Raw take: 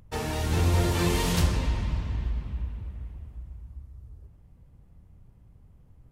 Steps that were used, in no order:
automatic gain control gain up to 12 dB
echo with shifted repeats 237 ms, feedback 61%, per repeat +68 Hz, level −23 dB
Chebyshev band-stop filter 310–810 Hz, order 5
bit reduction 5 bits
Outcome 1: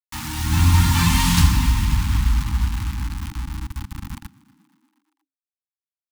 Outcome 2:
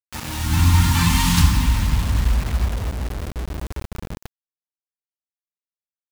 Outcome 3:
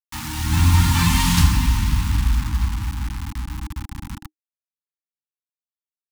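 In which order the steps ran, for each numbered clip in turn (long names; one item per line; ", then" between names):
automatic gain control, then bit reduction, then echo with shifted repeats, then Chebyshev band-stop filter
automatic gain control, then echo with shifted repeats, then Chebyshev band-stop filter, then bit reduction
echo with shifted repeats, then automatic gain control, then bit reduction, then Chebyshev band-stop filter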